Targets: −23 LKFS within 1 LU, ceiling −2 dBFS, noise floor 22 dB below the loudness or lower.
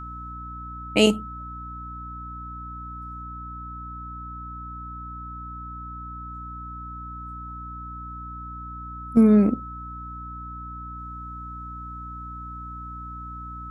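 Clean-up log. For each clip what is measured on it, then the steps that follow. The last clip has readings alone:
mains hum 60 Hz; hum harmonics up to 300 Hz; level of the hum −37 dBFS; interfering tone 1,300 Hz; level of the tone −36 dBFS; integrated loudness −29.0 LKFS; sample peak −4.0 dBFS; target loudness −23.0 LKFS
→ hum removal 60 Hz, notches 5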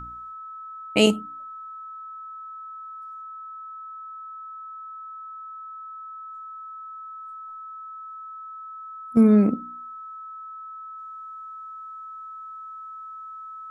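mains hum none found; interfering tone 1,300 Hz; level of the tone −36 dBFS
→ notch filter 1,300 Hz, Q 30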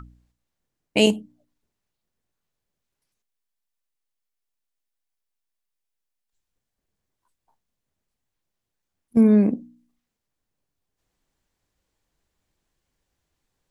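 interfering tone none found; integrated loudness −19.5 LKFS; sample peak −4.0 dBFS; target loudness −23.0 LKFS
→ level −3.5 dB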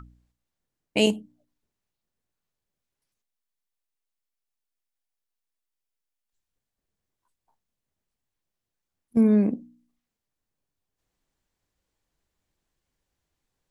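integrated loudness −23.0 LKFS; sample peak −7.5 dBFS; background noise floor −86 dBFS

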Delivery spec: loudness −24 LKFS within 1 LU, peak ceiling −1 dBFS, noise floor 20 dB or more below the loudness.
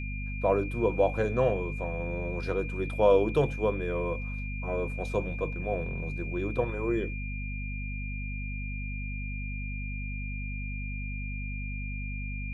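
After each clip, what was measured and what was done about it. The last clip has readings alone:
mains hum 50 Hz; hum harmonics up to 250 Hz; level of the hum −33 dBFS; interfering tone 2,400 Hz; level of the tone −40 dBFS; integrated loudness −31.0 LKFS; sample peak −11.0 dBFS; target loudness −24.0 LKFS
→ mains-hum notches 50/100/150/200/250 Hz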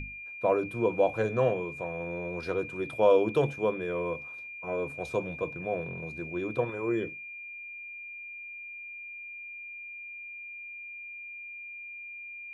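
mains hum none found; interfering tone 2,400 Hz; level of the tone −40 dBFS
→ notch filter 2,400 Hz, Q 30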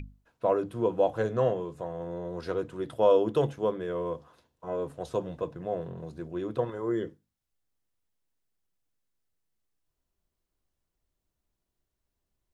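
interfering tone none found; integrated loudness −30.0 LKFS; sample peak −11.0 dBFS; target loudness −24.0 LKFS
→ level +6 dB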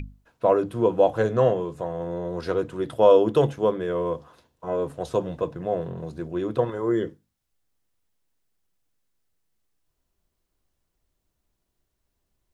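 integrated loudness −24.0 LKFS; sample peak −5.0 dBFS; background noise floor −78 dBFS

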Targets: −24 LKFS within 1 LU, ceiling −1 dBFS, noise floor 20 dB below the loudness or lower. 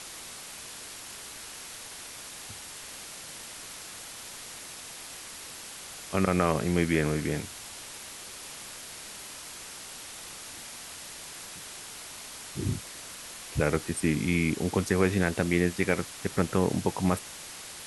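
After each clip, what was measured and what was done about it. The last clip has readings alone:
background noise floor −43 dBFS; target noise floor −52 dBFS; integrated loudness −32.0 LKFS; sample peak −9.0 dBFS; target loudness −24.0 LKFS
→ noise reduction from a noise print 9 dB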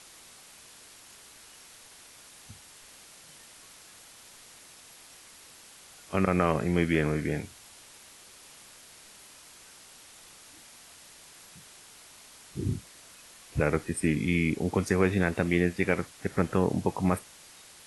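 background noise floor −52 dBFS; integrated loudness −28.0 LKFS; sample peak −9.5 dBFS; target loudness −24.0 LKFS
→ level +4 dB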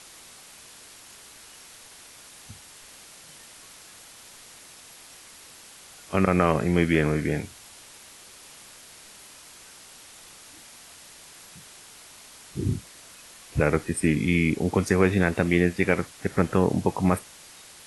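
integrated loudness −24.0 LKFS; sample peak −5.5 dBFS; background noise floor −48 dBFS

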